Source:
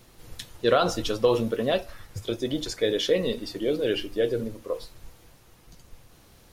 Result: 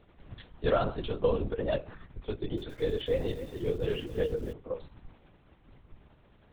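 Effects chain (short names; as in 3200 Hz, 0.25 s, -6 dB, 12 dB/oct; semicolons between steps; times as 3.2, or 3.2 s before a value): high shelf 3100 Hz -11 dB; LPC vocoder at 8 kHz whisper; 2.3–4.53 lo-fi delay 0.275 s, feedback 35%, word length 7-bit, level -12 dB; gain -5 dB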